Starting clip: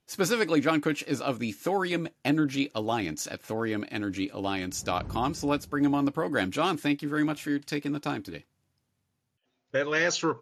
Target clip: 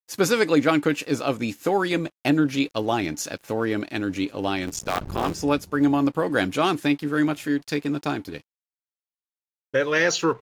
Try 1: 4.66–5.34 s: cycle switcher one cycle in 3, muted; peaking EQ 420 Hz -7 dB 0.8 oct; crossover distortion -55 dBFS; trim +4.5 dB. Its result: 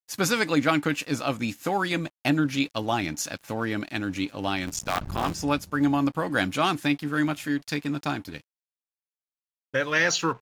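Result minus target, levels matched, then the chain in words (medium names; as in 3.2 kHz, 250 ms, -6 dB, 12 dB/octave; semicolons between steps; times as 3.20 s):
500 Hz band -3.5 dB
4.66–5.34 s: cycle switcher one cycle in 3, muted; peaking EQ 420 Hz +2 dB 0.8 oct; crossover distortion -55 dBFS; trim +4.5 dB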